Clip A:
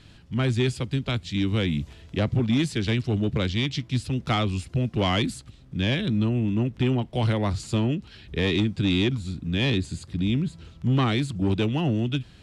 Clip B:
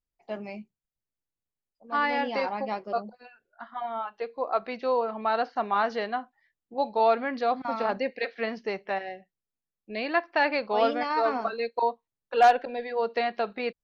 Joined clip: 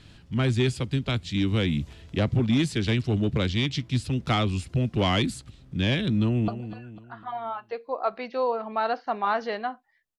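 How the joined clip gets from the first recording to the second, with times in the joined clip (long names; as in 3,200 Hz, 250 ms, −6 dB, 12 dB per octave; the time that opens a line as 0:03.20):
clip A
0:06.20–0:06.48: delay throw 250 ms, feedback 45%, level −11.5 dB
0:06.48: continue with clip B from 0:02.97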